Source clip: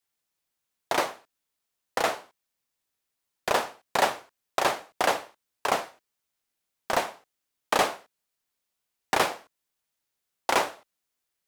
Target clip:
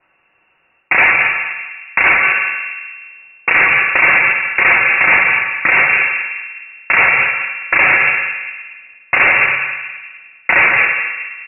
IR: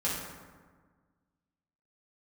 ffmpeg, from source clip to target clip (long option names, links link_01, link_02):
-filter_complex "[0:a]equalizer=frequency=200:width=2.2:gain=10,aecho=1:1:5.1:0.4,areverse,acompressor=threshold=-29dB:ratio=6,areverse,asoftclip=type=tanh:threshold=-29.5dB,asplit=2[link_01][link_02];[link_02]adelay=207,lowpass=frequency=1100:poles=1,volume=-12dB,asplit=2[link_03][link_04];[link_04]adelay=207,lowpass=frequency=1100:poles=1,volume=0.45,asplit=2[link_05][link_06];[link_06]adelay=207,lowpass=frequency=1100:poles=1,volume=0.45,asplit=2[link_07][link_08];[link_08]adelay=207,lowpass=frequency=1100:poles=1,volume=0.45,asplit=2[link_09][link_10];[link_10]adelay=207,lowpass=frequency=1100:poles=1,volume=0.45[link_11];[link_01][link_03][link_05][link_07][link_09][link_11]amix=inputs=6:normalize=0,asplit=2[link_12][link_13];[1:a]atrim=start_sample=2205,adelay=148[link_14];[link_13][link_14]afir=irnorm=-1:irlink=0,volume=-16dB[link_15];[link_12][link_15]amix=inputs=2:normalize=0,lowpass=frequency=2500:width_type=q:width=0.5098,lowpass=frequency=2500:width_type=q:width=0.6013,lowpass=frequency=2500:width_type=q:width=0.9,lowpass=frequency=2500:width_type=q:width=2.563,afreqshift=-2900,alimiter=level_in=31.5dB:limit=-1dB:release=50:level=0:latency=1,volume=-1dB"